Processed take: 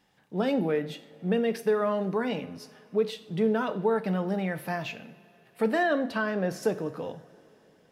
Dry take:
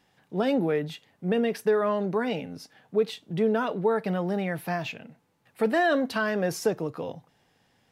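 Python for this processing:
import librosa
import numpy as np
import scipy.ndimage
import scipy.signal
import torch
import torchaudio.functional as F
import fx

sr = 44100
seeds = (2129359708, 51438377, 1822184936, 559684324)

y = fx.high_shelf(x, sr, hz=4300.0, db=-9.5, at=(5.83, 6.63))
y = fx.rev_double_slope(y, sr, seeds[0], early_s=0.49, late_s=3.8, knee_db=-18, drr_db=10.5)
y = y * 10.0 ** (-2.0 / 20.0)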